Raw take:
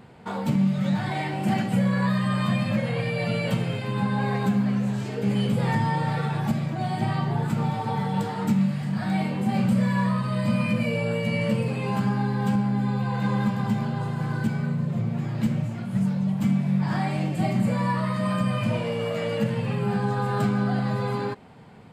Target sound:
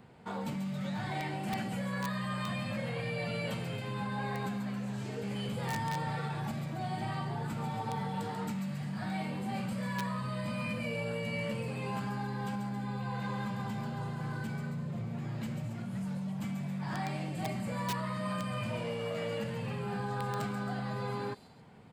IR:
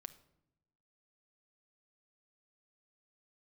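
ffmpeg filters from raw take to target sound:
-filter_complex "[0:a]acrossover=split=560|3700[link_01][link_02][link_03];[link_01]alimiter=level_in=0.5dB:limit=-24dB:level=0:latency=1:release=22,volume=-0.5dB[link_04];[link_02]aeval=exprs='(mod(12.6*val(0)+1,2)-1)/12.6':channel_layout=same[link_05];[link_03]aecho=1:1:139|274:0.562|0.335[link_06];[link_04][link_05][link_06]amix=inputs=3:normalize=0,volume=-7.5dB"

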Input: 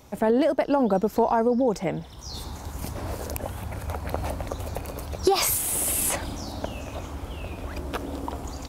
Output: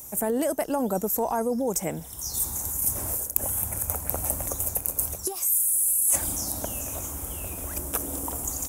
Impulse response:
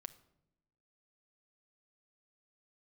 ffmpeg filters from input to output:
-af "aexciter=amount=15.3:drive=6:freq=6600,areverse,acompressor=threshold=-18dB:ratio=10,areverse,volume=-3dB"

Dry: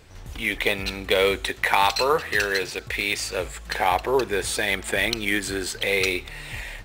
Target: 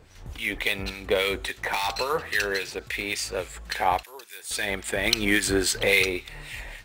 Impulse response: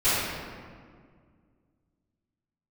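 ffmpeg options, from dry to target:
-filter_complex "[0:a]asettb=1/sr,asplit=3[link_01][link_02][link_03];[link_01]atrim=end=1.354[link_04];[link_02]atrim=start=1.35:end=1.89,asetpts=PTS-STARTPTS,afade=type=in:duration=0.004:curve=qsin,afade=type=out:start_time=0.536:duration=0.004:curve=qsin,asoftclip=type=hard:threshold=-17dB[link_05];[link_03]atrim=start=1.886[link_06];[link_04][link_05]acrossfade=duration=0.004:curve1=hsin:curve2=qsin[link_07];[link_07][link_06]acrossfade=duration=0.004:curve1=qsin:curve2=hsin,asettb=1/sr,asplit=3[link_08][link_09][link_10];[link_08]atrim=end=4.034[link_11];[link_09]atrim=start=4.03:end=4.51,asetpts=PTS-STARTPTS,afade=type=in:duration=0.004:curve=qsin,afade=type=out:start_time=0.476:duration=0.004:curve=qsin,aderivative[link_12];[link_10]atrim=start=4.506[link_13];[link_11][link_12]acrossfade=duration=0.004:curve1=hsin:curve2=qsin[link_14];[link_14][link_13]acrossfade=duration=0.004:curve1=qsin:curve2=hsin,asplit=3[link_15][link_16][link_17];[link_15]afade=type=out:start_time=5.05:duration=0.02[link_18];[link_16]acontrast=59,afade=type=in:start_time=5.05:duration=0.02,afade=type=out:start_time=6.02:duration=0.02[link_19];[link_17]afade=type=in:start_time=6.02:duration=0.02[link_20];[link_18][link_19][link_20]amix=inputs=3:normalize=0,acrossover=split=1500[link_21][link_22];[link_21]aeval=exprs='val(0)*(1-0.7/2+0.7/2*cos(2*PI*3.6*n/s))':channel_layout=same[link_23];[link_22]aeval=exprs='val(0)*(1-0.7/2-0.7/2*cos(2*PI*3.6*n/s))':channel_layout=same[link_24];[link_23][link_24]amix=inputs=2:normalize=0"

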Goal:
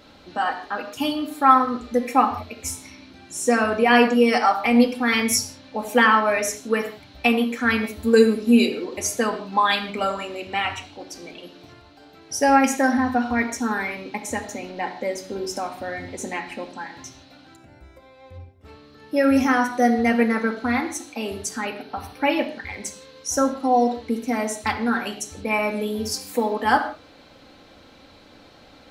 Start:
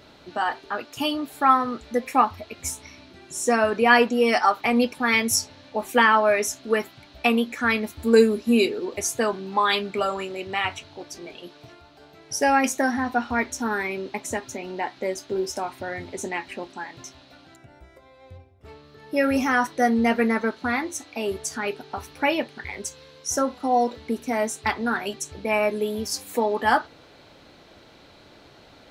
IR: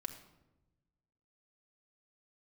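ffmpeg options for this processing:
-filter_complex "[0:a]asettb=1/sr,asplit=3[link_01][link_02][link_03];[link_01]atrim=end=21.494[link_04];[link_02]atrim=start=21.49:end=22.37,asetpts=PTS-STARTPTS,afade=type=in:duration=0.004:curve=qsin,afade=type=out:start_time=0.876:duration=0.004:curve=qsin,equalizer=frequency=7100:width=3.7:gain=-15[link_05];[link_03]atrim=start=22.366[link_06];[link_04][link_05]acrossfade=duration=0.004:curve1=hsin:curve2=qsin[link_07];[link_07][link_06]acrossfade=duration=0.004:curve1=qsin:curve2=hsin[link_08];[1:a]atrim=start_sample=2205,afade=type=out:start_time=0.23:duration=0.01,atrim=end_sample=10584[link_09];[link_08][link_09]afir=irnorm=-1:irlink=0,volume=3dB"

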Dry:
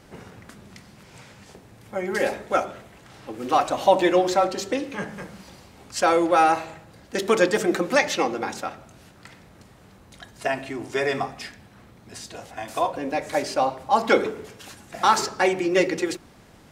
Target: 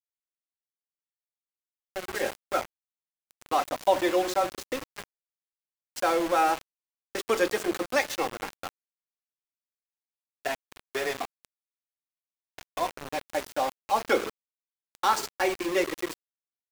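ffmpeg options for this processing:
ffmpeg -i in.wav -af "highpass=frequency=250:width=0.5412,highpass=frequency=250:width=1.3066,aeval=exprs='val(0)*gte(abs(val(0)),0.0596)':channel_layout=same,volume=-5.5dB" out.wav

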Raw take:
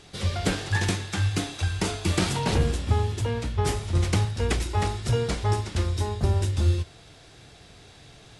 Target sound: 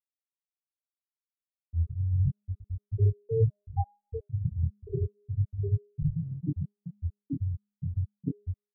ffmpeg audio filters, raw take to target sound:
ffmpeg -i in.wav -filter_complex "[0:a]areverse,highshelf=frequency=4000:gain=-5.5,aecho=1:1:7:0.91,aecho=1:1:1079:0.112,asplit=2[link_01][link_02];[link_02]volume=28dB,asoftclip=hard,volume=-28dB,volume=-10dB[link_03];[link_01][link_03]amix=inputs=2:normalize=0,afftfilt=real='re*gte(hypot(re,im),0.708)':imag='im*gte(hypot(re,im),0.708)':win_size=1024:overlap=0.75,asetrate=42336,aresample=44100,bandreject=frequency=205.4:width_type=h:width=4,bandreject=frequency=410.8:width_type=h:width=4,bandreject=frequency=616.2:width_type=h:width=4,bandreject=frequency=821.6:width_type=h:width=4,bandreject=frequency=1027:width_type=h:width=4,bandreject=frequency=1232.4:width_type=h:width=4,bandreject=frequency=1437.8:width_type=h:width=4,bandreject=frequency=1643.2:width_type=h:width=4,bandreject=frequency=1848.6:width_type=h:width=4,flanger=delay=19:depth=6.3:speed=0.33" out.wav

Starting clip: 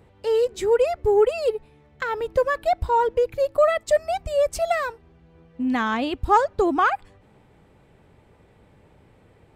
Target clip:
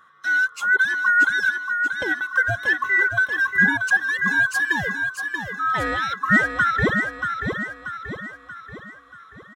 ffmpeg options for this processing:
ffmpeg -i in.wav -filter_complex "[0:a]afftfilt=real='real(if(lt(b,960),b+48*(1-2*mod(floor(b/48),2)),b),0)':imag='imag(if(lt(b,960),b+48*(1-2*mod(floor(b/48),2)),b),0)':win_size=2048:overlap=0.75,highpass=92,asplit=2[link_01][link_02];[link_02]aecho=0:1:633|1266|1899|2532|3165|3798:0.501|0.241|0.115|0.0554|0.0266|0.0128[link_03];[link_01][link_03]amix=inputs=2:normalize=0" out.wav

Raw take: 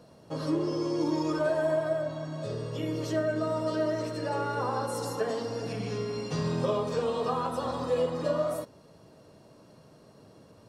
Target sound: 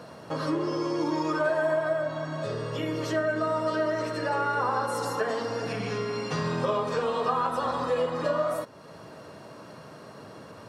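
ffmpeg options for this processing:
ffmpeg -i in.wav -af "highpass=82,equalizer=frequency=1500:width=0.68:gain=9.5,acompressor=threshold=-48dB:ratio=1.5,volume=7.5dB" out.wav

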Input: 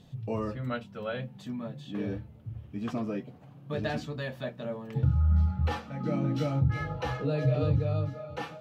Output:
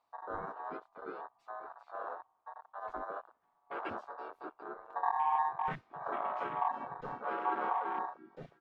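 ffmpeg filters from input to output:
ffmpeg -i in.wav -filter_complex "[0:a]aeval=exprs='val(0)*sin(2*PI*1000*n/s)':channel_layout=same,asplit=2[link_01][link_02];[link_02]asetrate=37084,aresample=44100,atempo=1.18921,volume=0dB[link_03];[link_01][link_03]amix=inputs=2:normalize=0,afwtdn=0.0251,volume=-8dB" out.wav

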